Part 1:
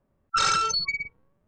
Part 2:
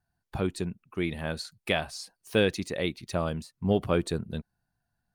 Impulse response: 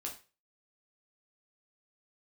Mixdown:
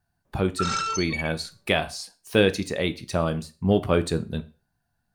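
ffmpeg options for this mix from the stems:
-filter_complex "[0:a]acompressor=threshold=-30dB:ratio=2,adelay=250,volume=0dB,asplit=2[a][b];[b]volume=-6.5dB[c];[1:a]volume=1.5dB,asplit=3[d][e][f];[e]volume=-4dB[g];[f]apad=whole_len=75942[h];[a][h]sidechaincompress=threshold=-31dB:ratio=8:attack=16:release=130[i];[2:a]atrim=start_sample=2205[j];[c][g]amix=inputs=2:normalize=0[k];[k][j]afir=irnorm=-1:irlink=0[l];[i][d][l]amix=inputs=3:normalize=0"

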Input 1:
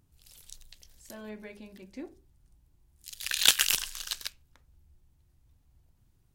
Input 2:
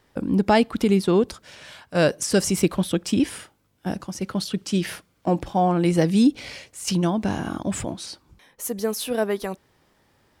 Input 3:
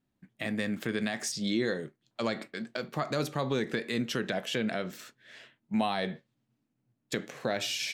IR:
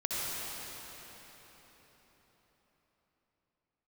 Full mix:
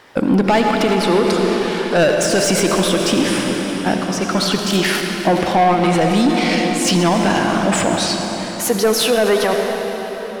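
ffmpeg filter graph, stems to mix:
-filter_complex "[0:a]adelay=1250,volume=-6.5dB[a];[1:a]asplit=2[b][c];[c]highpass=f=720:p=1,volume=22dB,asoftclip=type=tanh:threshold=-5dB[d];[b][d]amix=inputs=2:normalize=0,lowpass=f=3.3k:p=1,volume=-6dB,volume=1.5dB,asplit=2[e][f];[f]volume=-8.5dB[g];[2:a]tiltshelf=f=970:g=9,volume=-10dB,asplit=2[h][i];[i]apad=whole_len=458655[j];[e][j]sidechaincompress=threshold=-36dB:ratio=8:attack=16:release=420[k];[3:a]atrim=start_sample=2205[l];[g][l]afir=irnorm=-1:irlink=0[m];[a][k][h][m]amix=inputs=4:normalize=0,alimiter=limit=-7dB:level=0:latency=1:release=43"

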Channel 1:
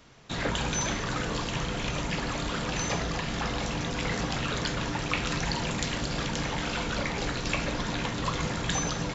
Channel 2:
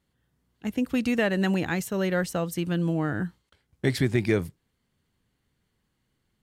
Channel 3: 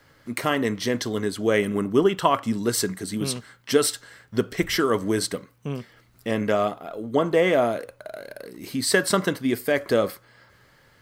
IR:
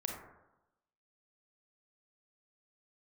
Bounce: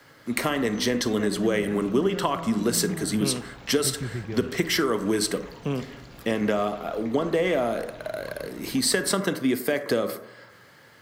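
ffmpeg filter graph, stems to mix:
-filter_complex "[0:a]lowpass=f=3.9k:p=1,volume=-15dB[a];[1:a]aemphasis=mode=reproduction:type=bsi,volume=-15dB[b];[2:a]highpass=140,acompressor=threshold=-26dB:ratio=2.5,volume=2dB,asplit=2[c][d];[d]volume=-7.5dB[e];[3:a]atrim=start_sample=2205[f];[e][f]afir=irnorm=-1:irlink=0[g];[a][b][c][g]amix=inputs=4:normalize=0,acrossover=split=310|3000[h][i][j];[i]acompressor=threshold=-24dB:ratio=2[k];[h][k][j]amix=inputs=3:normalize=0"

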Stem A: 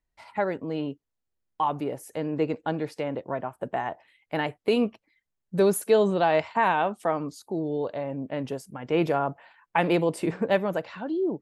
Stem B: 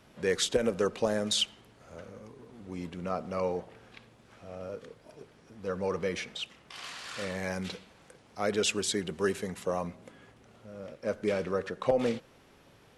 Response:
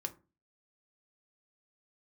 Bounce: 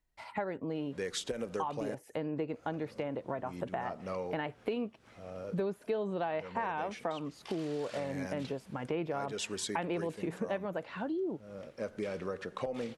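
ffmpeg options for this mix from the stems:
-filter_complex "[0:a]acrossover=split=3700[a][b];[b]acompressor=threshold=-59dB:ratio=4:attack=1:release=60[c];[a][c]amix=inputs=2:normalize=0,volume=1dB[d];[1:a]adelay=750,volume=-2.5dB,asplit=3[e][f][g];[e]atrim=end=1.95,asetpts=PTS-STARTPTS,afade=t=out:st=1.946:d=0.004:c=hsin[h];[f]atrim=start=1.95:end=2.53,asetpts=PTS-STARTPTS,volume=0[i];[g]atrim=start=2.53,asetpts=PTS-STARTPTS,afade=t=in:d=0.004:c=hsin[j];[h][i][j]concat=n=3:v=0:a=1[k];[d][k]amix=inputs=2:normalize=0,acompressor=threshold=-34dB:ratio=4"

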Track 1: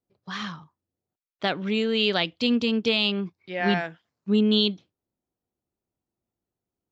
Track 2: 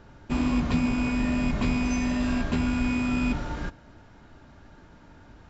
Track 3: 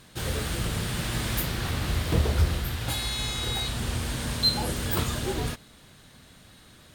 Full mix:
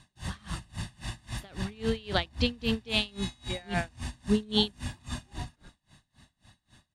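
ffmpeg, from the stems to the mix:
-filter_complex "[0:a]volume=-1dB[a];[1:a]adelay=2000,volume=-18.5dB[b];[2:a]lowpass=f=10k:w=0.5412,lowpass=f=10k:w=1.3066,alimiter=limit=-22dB:level=0:latency=1:release=19,aecho=1:1:1.1:0.94,volume=-6.5dB[c];[a][b][c]amix=inputs=3:normalize=0,aeval=exprs='val(0)*pow(10,-28*(0.5-0.5*cos(2*PI*3.7*n/s))/20)':c=same"

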